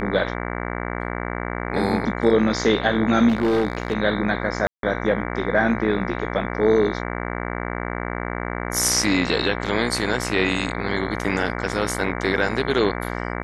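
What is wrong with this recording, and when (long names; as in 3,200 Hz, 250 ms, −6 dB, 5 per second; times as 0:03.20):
mains buzz 60 Hz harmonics 38 −28 dBFS
0:03.28–0:03.93: clipping −16 dBFS
0:04.67–0:04.83: drop-out 162 ms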